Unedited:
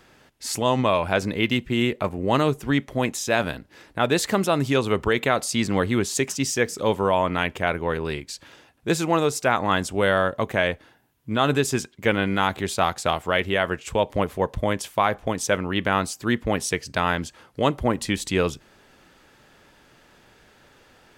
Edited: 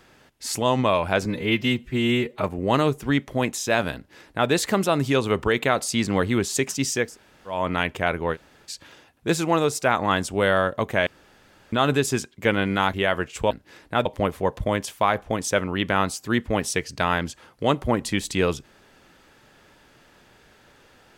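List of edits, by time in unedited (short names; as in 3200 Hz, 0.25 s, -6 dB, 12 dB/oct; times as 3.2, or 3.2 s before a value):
1.25–2.04 stretch 1.5×
3.55–4.1 copy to 14.02
6.68–7.17 room tone, crossfade 0.24 s
7.95–8.28 room tone, crossfade 0.06 s
10.67–11.33 room tone
12.54–13.45 cut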